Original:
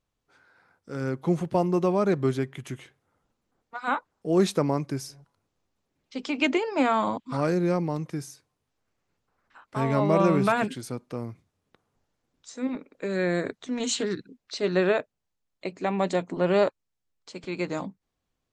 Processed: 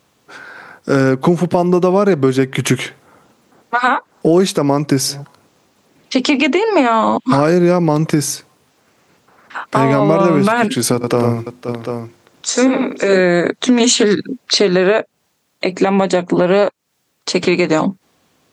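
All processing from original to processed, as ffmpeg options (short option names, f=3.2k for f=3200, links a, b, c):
-filter_complex "[0:a]asettb=1/sr,asplit=3[a][b][c];[a]atrim=end=10.944[d];[b]atrim=start=10.94:end=13.2,asetpts=PTS-STARTPTS,afade=t=in:d=0.004:c=qsin,afade=t=out:st=2.256:d=0.004:c=qsin,equalizer=f=210:t=o:w=0.53:g=-5,bandreject=f=50:t=h:w=6,bandreject=f=100:t=h:w=6,bandreject=f=150:t=h:w=6,bandreject=f=200:t=h:w=6,bandreject=f=250:t=h:w=6,bandreject=f=300:t=h:w=6,bandreject=f=350:t=h:w=6,bandreject=f=400:t=h:w=6,aecho=1:1:69|94|524|742:0.158|0.473|0.178|0.237,atrim=end_sample=99666[e];[c]atrim=start=13.196[f];[d][e]acrossfade=d=0.004:c1=hsin:c2=qsin[g];[g][f]acrossfade=d=0.004:c1=qsin:c2=hsin,highpass=150,acompressor=threshold=-34dB:ratio=12,alimiter=level_in=27dB:limit=-1dB:release=50:level=0:latency=1,volume=-1dB"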